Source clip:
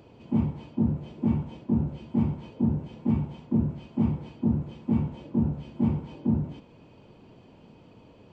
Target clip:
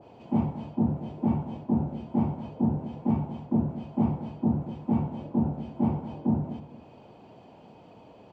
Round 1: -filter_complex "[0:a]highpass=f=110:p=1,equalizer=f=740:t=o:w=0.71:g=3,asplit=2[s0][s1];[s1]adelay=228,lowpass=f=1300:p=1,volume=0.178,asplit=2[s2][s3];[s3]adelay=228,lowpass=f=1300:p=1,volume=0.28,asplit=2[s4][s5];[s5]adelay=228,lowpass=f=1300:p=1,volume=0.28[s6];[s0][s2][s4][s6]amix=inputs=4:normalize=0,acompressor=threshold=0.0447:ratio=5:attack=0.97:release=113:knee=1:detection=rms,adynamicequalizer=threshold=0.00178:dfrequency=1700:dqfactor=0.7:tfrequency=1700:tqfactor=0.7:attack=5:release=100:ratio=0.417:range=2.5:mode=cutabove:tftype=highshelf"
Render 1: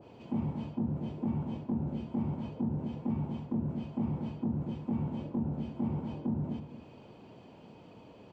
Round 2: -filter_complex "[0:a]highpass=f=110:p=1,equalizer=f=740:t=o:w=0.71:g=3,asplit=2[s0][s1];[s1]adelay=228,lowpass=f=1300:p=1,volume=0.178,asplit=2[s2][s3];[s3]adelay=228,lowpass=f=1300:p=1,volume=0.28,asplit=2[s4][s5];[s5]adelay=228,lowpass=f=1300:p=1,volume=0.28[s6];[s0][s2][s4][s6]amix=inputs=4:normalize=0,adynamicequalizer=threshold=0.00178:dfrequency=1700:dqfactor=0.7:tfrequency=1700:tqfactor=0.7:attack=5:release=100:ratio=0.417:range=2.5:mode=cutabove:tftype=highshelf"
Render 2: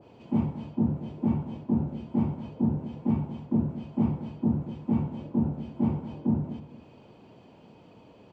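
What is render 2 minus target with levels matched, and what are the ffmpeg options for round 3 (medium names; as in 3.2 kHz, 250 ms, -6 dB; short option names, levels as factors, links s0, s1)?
1 kHz band -4.5 dB
-filter_complex "[0:a]highpass=f=110:p=1,equalizer=f=740:t=o:w=0.71:g=10,asplit=2[s0][s1];[s1]adelay=228,lowpass=f=1300:p=1,volume=0.178,asplit=2[s2][s3];[s3]adelay=228,lowpass=f=1300:p=1,volume=0.28,asplit=2[s4][s5];[s5]adelay=228,lowpass=f=1300:p=1,volume=0.28[s6];[s0][s2][s4][s6]amix=inputs=4:normalize=0,adynamicequalizer=threshold=0.00178:dfrequency=1700:dqfactor=0.7:tfrequency=1700:tqfactor=0.7:attack=5:release=100:ratio=0.417:range=2.5:mode=cutabove:tftype=highshelf"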